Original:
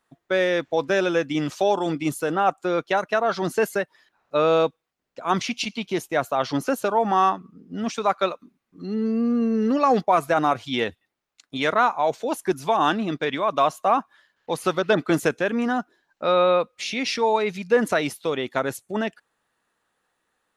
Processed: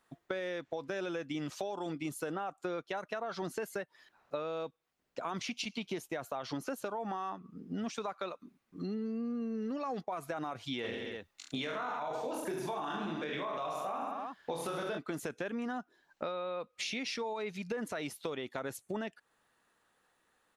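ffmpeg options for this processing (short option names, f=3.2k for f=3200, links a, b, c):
-filter_complex "[0:a]asplit=3[a][b][c];[a]afade=t=out:st=10.83:d=0.02[d];[b]aecho=1:1:20|44|72.8|107.4|148.8|198.6|258.3|330:0.794|0.631|0.501|0.398|0.316|0.251|0.2|0.158,afade=t=in:st=10.83:d=0.02,afade=t=out:st=14.97:d=0.02[e];[c]afade=t=in:st=14.97:d=0.02[f];[d][e][f]amix=inputs=3:normalize=0,alimiter=limit=-15dB:level=0:latency=1:release=39,acompressor=threshold=-35dB:ratio=8"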